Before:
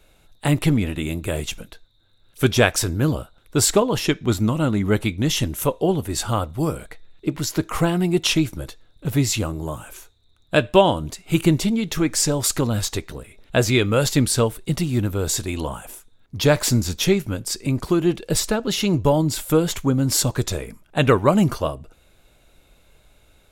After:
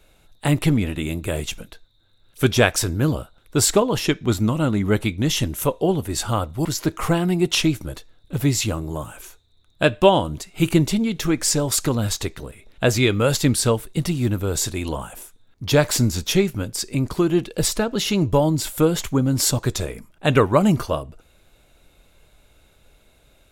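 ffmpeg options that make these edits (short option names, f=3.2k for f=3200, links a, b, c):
-filter_complex "[0:a]asplit=2[a][b];[a]atrim=end=6.652[c];[b]atrim=start=7.368[d];[c][d]acrossfade=d=0.004:c1=hsin:c2=hsin"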